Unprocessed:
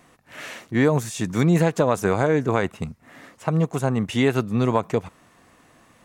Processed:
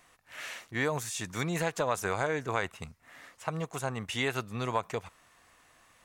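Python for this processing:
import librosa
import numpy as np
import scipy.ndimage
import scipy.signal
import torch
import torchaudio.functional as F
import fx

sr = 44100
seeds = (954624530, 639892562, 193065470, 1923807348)

y = fx.peak_eq(x, sr, hz=220.0, db=-14.0, octaves=2.8)
y = F.gain(torch.from_numpy(y), -3.0).numpy()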